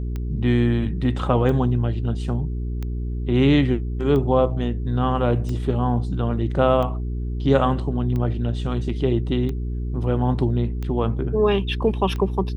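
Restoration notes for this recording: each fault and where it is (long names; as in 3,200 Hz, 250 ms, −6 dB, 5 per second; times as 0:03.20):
mains hum 60 Hz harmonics 7 −26 dBFS
scratch tick 45 rpm −18 dBFS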